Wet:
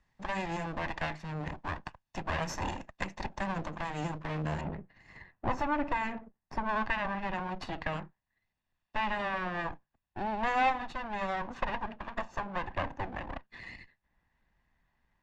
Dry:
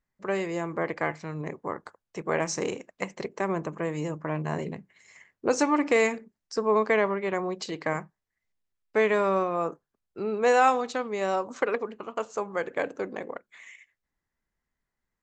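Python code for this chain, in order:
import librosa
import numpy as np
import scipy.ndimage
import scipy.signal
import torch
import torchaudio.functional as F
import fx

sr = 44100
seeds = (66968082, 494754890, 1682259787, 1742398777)

y = fx.lower_of_two(x, sr, delay_ms=1.1)
y = fx.lowpass(y, sr, hz=fx.steps((0.0, 5300.0), (4.61, 1800.0), (6.69, 3000.0)), slope=12)
y = fx.band_squash(y, sr, depth_pct=40)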